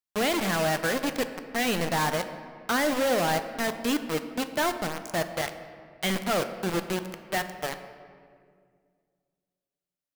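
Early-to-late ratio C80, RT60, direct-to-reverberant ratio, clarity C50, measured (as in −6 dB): 11.5 dB, 2.1 s, 8.5 dB, 10.5 dB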